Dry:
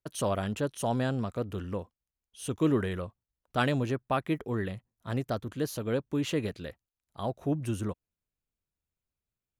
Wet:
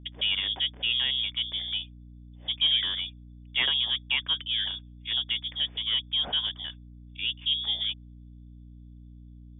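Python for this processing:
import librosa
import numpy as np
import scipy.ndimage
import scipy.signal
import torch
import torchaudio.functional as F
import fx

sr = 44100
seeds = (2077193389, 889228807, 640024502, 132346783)

p1 = fx.env_lowpass(x, sr, base_hz=1200.0, full_db=-27.5)
p2 = np.repeat(scipy.signal.resample_poly(p1, 1, 6), 6)[:len(p1)]
p3 = 10.0 ** (-25.5 / 20.0) * np.tanh(p2 / 10.0 ** (-25.5 / 20.0))
p4 = p2 + F.gain(torch.from_numpy(p3), -5.0).numpy()
p5 = fx.freq_invert(p4, sr, carrier_hz=3500)
p6 = fx.add_hum(p5, sr, base_hz=60, snr_db=16)
y = F.gain(torch.from_numpy(p6), -1.5).numpy()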